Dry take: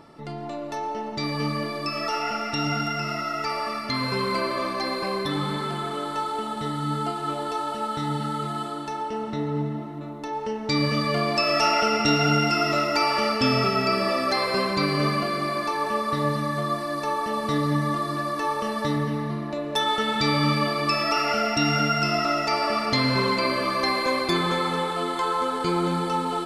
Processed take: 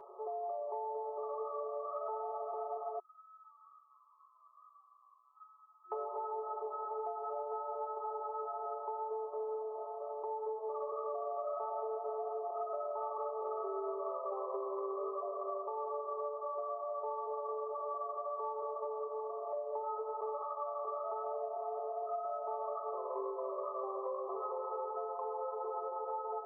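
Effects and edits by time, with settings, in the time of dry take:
2.99–5.92 s: steep high-pass 1.9 kHz
10.16–15.68 s: feedback echo behind a low-pass 61 ms, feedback 80%, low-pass 2.9 kHz, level -10.5 dB
20.42–20.85 s: steep high-pass 560 Hz
whole clip: FFT band-pass 360–1300 Hz; comb 7.2 ms, depth 85%; compression 6:1, threshold -35 dBFS; trim -2 dB

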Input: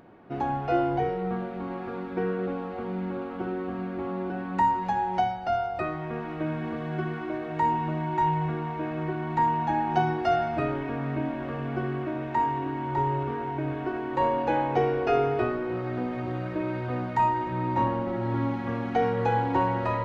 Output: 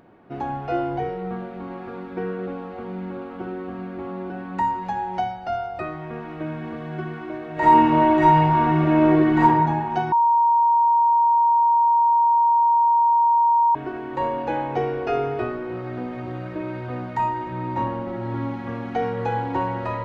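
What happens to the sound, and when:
7.54–9.42 s: reverb throw, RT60 1.4 s, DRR -11.5 dB
10.12–13.75 s: bleep 936 Hz -14 dBFS

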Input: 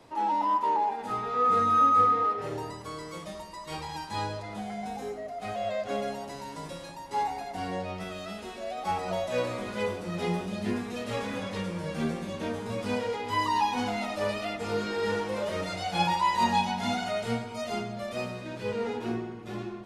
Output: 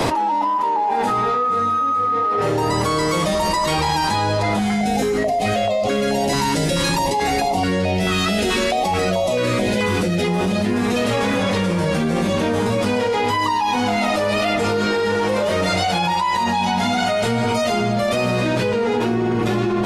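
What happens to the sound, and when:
4.59–10.28 s: step-sequenced notch 4.6 Hz 590–1600 Hz
whole clip: level flattener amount 100%

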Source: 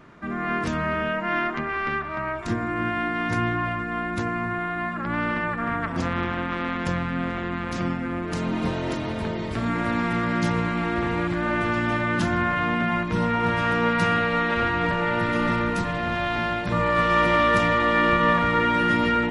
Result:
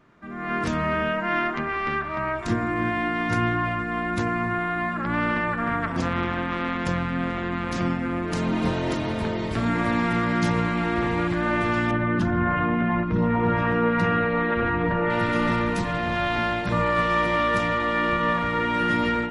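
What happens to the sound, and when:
11.91–15.10 s: resonances exaggerated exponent 1.5
whole clip: de-hum 82.53 Hz, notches 36; level rider gain up to 11.5 dB; trim -8.5 dB

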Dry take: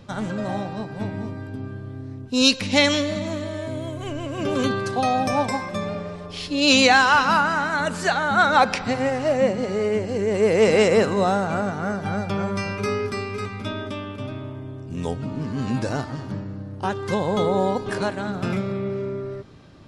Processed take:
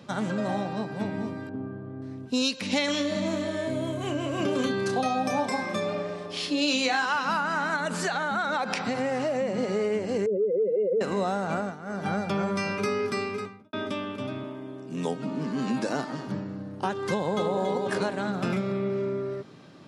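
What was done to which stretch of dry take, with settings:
1.49–2.02 s: low-pass 1.3 kHz
2.85–7.06 s: doubling 31 ms -5.5 dB
7.76–9.57 s: compression 4:1, threshold -23 dBFS
10.26–11.01 s: spectral contrast enhancement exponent 2.9
11.53–12.09 s: dip -13.5 dB, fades 0.24 s
13.23–13.73 s: studio fade out
14.43–16.26 s: high-pass 160 Hz 24 dB/octave
17.09–17.59 s: echo throw 280 ms, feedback 30%, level -5.5 dB
whole clip: high-pass 140 Hz 24 dB/octave; compression, threshold -23 dBFS

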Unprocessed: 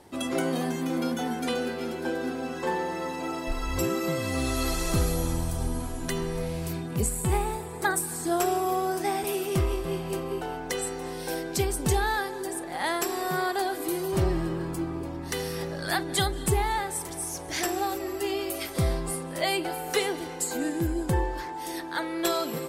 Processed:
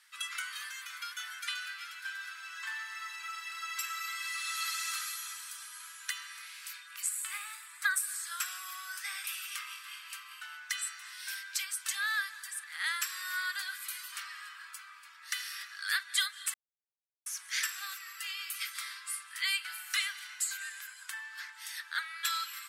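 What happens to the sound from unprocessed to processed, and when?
16.54–17.26 s: mute
whole clip: steep high-pass 1.3 kHz 48 dB/octave; treble shelf 6.4 kHz -4.5 dB

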